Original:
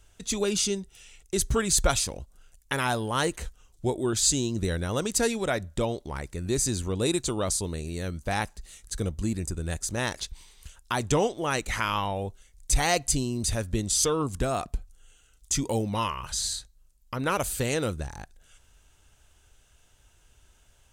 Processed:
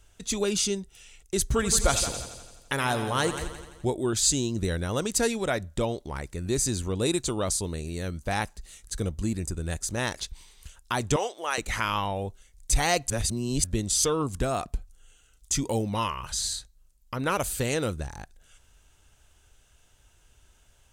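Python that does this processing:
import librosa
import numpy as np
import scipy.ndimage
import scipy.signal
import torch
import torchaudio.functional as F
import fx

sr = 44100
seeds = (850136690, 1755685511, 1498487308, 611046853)

y = fx.echo_heads(x, sr, ms=85, heads='first and second', feedback_pct=48, wet_db=-13.0, at=(1.49, 3.85))
y = fx.highpass(y, sr, hz=630.0, slope=12, at=(11.16, 11.58))
y = fx.edit(y, sr, fx.reverse_span(start_s=13.1, length_s=0.54), tone=tone)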